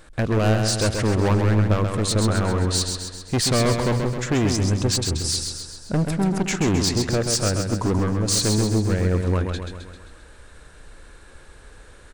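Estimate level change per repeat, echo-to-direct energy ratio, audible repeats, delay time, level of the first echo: -5.0 dB, -4.0 dB, 6, 132 ms, -5.5 dB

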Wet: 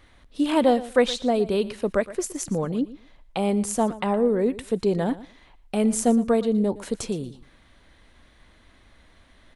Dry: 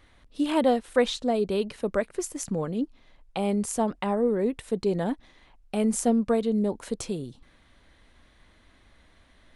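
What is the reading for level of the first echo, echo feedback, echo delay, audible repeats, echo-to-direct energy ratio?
-17.0 dB, 17%, 117 ms, 2, -17.0 dB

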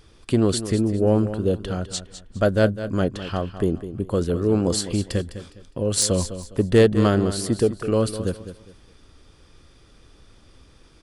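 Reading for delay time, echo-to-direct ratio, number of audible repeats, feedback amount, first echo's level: 205 ms, -11.5 dB, 3, 29%, -12.0 dB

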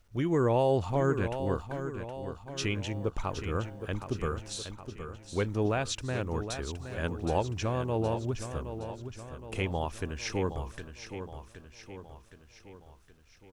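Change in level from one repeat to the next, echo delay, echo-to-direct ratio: -5.5 dB, 768 ms, -8.0 dB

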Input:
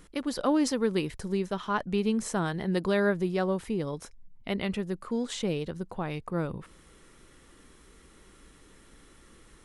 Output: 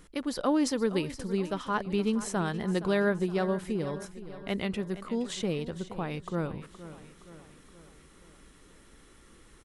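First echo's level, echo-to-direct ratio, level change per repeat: -14.5 dB, -13.0 dB, -5.5 dB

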